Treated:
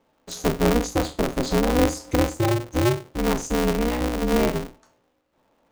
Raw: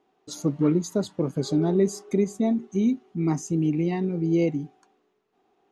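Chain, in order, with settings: spectral trails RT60 0.31 s; polarity switched at an audio rate 120 Hz; gain +1.5 dB

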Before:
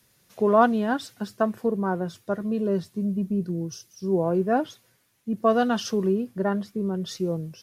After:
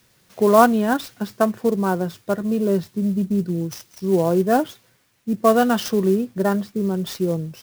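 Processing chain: clock jitter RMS 0.024 ms; gain +5 dB

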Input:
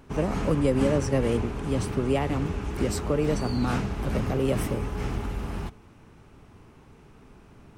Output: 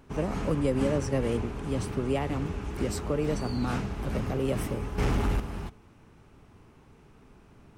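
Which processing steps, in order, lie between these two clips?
4.98–5.4 sine folder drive 6 dB, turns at -16.5 dBFS; gain -3.5 dB

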